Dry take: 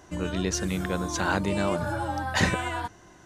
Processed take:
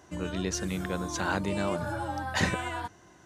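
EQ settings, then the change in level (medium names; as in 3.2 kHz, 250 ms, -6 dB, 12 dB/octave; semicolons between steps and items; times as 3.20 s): high-pass 59 Hz; -3.5 dB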